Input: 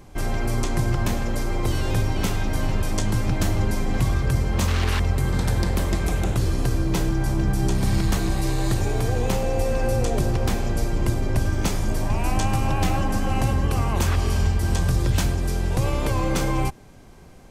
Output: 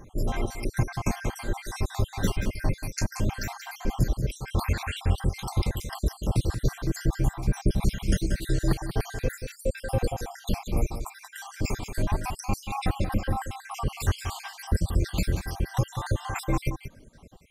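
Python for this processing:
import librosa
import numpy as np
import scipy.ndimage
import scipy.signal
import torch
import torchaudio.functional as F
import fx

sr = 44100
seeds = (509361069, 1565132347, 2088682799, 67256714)

p1 = fx.spec_dropout(x, sr, seeds[0], share_pct=71)
p2 = fx.dereverb_blind(p1, sr, rt60_s=0.71)
y = p2 + fx.echo_single(p2, sr, ms=182, db=-9.0, dry=0)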